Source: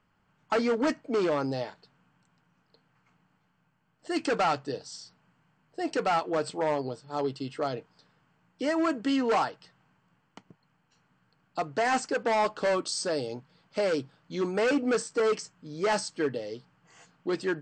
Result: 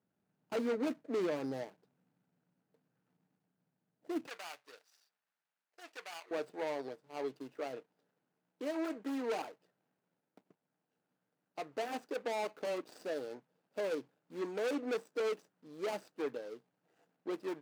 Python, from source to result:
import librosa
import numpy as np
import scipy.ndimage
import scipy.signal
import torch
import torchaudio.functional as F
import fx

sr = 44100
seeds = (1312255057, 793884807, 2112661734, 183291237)

y = scipy.signal.medfilt(x, 41)
y = fx.highpass(y, sr, hz=fx.steps((0.0, 190.0), (4.27, 1300.0), (6.31, 340.0)), slope=12)
y = y * 10.0 ** (-5.5 / 20.0)